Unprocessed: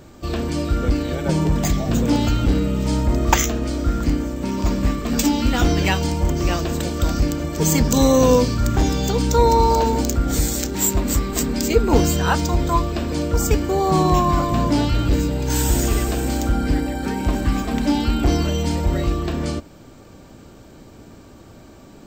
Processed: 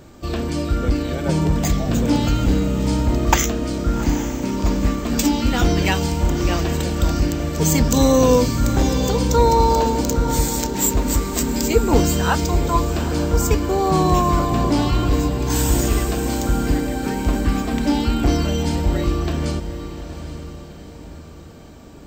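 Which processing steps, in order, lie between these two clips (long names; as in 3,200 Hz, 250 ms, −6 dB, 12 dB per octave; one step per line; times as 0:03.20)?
feedback delay with all-pass diffusion 821 ms, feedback 42%, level −11 dB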